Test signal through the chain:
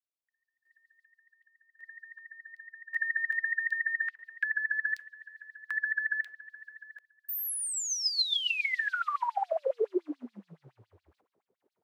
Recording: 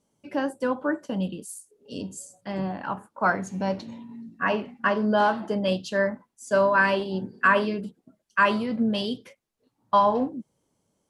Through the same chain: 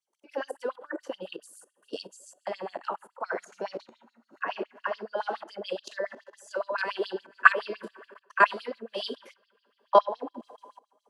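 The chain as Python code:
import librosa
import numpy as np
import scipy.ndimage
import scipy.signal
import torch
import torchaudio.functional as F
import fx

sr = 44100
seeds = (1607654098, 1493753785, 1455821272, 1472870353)

y = fx.rev_double_slope(x, sr, seeds[0], early_s=0.31, late_s=4.2, knee_db=-19, drr_db=17.0)
y = fx.level_steps(y, sr, step_db=18)
y = fx.filter_lfo_highpass(y, sr, shape='sine', hz=7.1, low_hz=360.0, high_hz=4600.0, q=4.0)
y = y * 10.0 ** (1.5 / 20.0)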